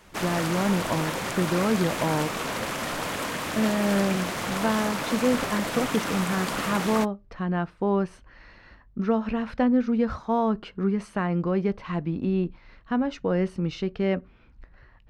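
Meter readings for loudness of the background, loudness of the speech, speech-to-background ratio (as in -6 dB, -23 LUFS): -29.5 LUFS, -27.0 LUFS, 2.5 dB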